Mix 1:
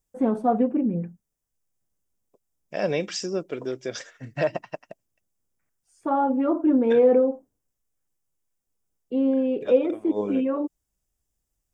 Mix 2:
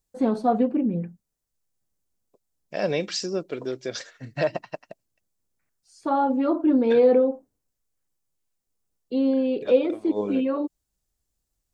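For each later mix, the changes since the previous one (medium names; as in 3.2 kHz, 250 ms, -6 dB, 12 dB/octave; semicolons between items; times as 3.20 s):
first voice: add peaking EQ 4.9 kHz +11 dB 1.3 oct; master: add peaking EQ 4.2 kHz +12.5 dB 0.21 oct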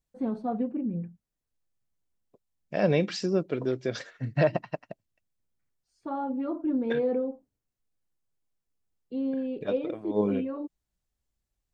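first voice -11.0 dB; master: add tone controls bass +8 dB, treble -10 dB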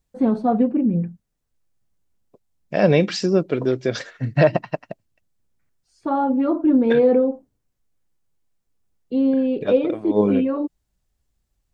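first voice +11.5 dB; second voice +8.0 dB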